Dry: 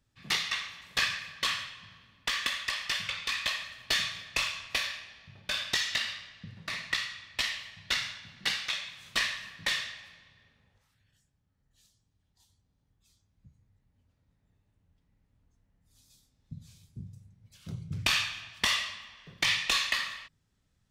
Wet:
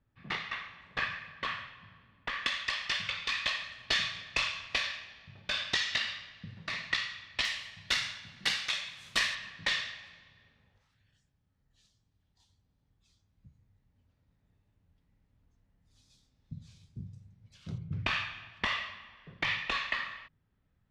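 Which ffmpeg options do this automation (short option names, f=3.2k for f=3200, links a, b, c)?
-af "asetnsamples=n=441:p=0,asendcmd='2.46 lowpass f 5000;7.45 lowpass f 11000;9.35 lowpass f 5300;17.78 lowpass f 2200',lowpass=1.9k"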